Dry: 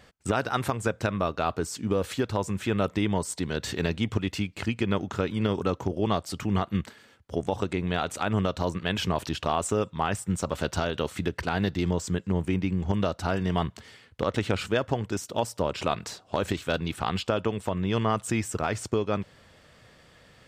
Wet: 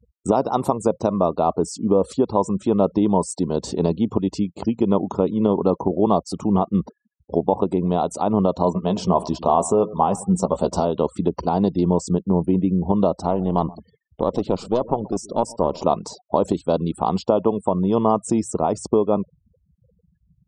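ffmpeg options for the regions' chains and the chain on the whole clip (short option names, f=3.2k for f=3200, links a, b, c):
-filter_complex "[0:a]asettb=1/sr,asplit=3[a][b][c];[a]atrim=end=8.644[d];[b]atrim=start=8.64:end=10.87,asetpts=PTS-STARTPTS,afade=t=in:d=0.004:c=qsin,afade=t=out:st=2.226:d=0.004:c=qsin,bandreject=f=300:w=7.8,asplit=2[e][f];[f]adelay=16,volume=-10.5dB[g];[e][g]amix=inputs=2:normalize=0,atrim=end_sample=98343,asplit=2[h][i];[i]adelay=104,lowpass=f=3.8k:p=1,volume=-17.5dB,asplit=2[j][k];[k]adelay=104,lowpass=f=3.8k:p=1,volume=0.38,asplit=2[l][m];[m]adelay=104,lowpass=f=3.8k:p=1,volume=0.38[n];[h][j][l][n]amix=inputs=4:normalize=0,atrim=end_sample=98343[o];[c]atrim=start=10.866[p];[d][o]acrossfade=d=0.004:c1=hsin:c2=qsin[q];[q][p]acrossfade=d=0.004:c1=qsin:c2=hsin,asettb=1/sr,asplit=3[r][s][t];[r]atrim=end=13.204[u];[s]atrim=start=13.2:end=15.86,asetpts=PTS-STARTPTS,afade=t=in:d=0.004:c=qsin,afade=t=out:st=2.656:d=0.004:c=qsin,aeval=exprs='clip(val(0),-1,0.0158)':c=same,aecho=1:1:128|256:0.0891|0.0152,atrim=end_sample=117306[v];[t]atrim=start=15.856[w];[u][v]acrossfade=d=0.004:c1=hsin:c2=qsin[x];[x][w]acrossfade=d=0.004:c1=qsin:c2=hsin,equalizer=f=61:w=3.3:g=9.5,afftfilt=real='re*gte(hypot(re,im),0.01)':imag='im*gte(hypot(re,im),0.01)':win_size=1024:overlap=0.75,firequalizer=gain_entry='entry(110,0);entry(170,12);entry(1000,14);entry(1600,-15);entry(4800,7)':delay=0.05:min_phase=1,volume=-3.5dB"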